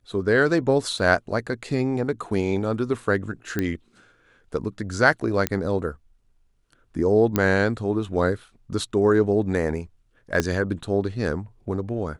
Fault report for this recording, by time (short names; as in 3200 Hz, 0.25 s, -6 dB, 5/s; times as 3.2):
0.99 gap 2.4 ms
3.59 pop -11 dBFS
5.47 pop -6 dBFS
7.36 pop -7 dBFS
10.4 pop -7 dBFS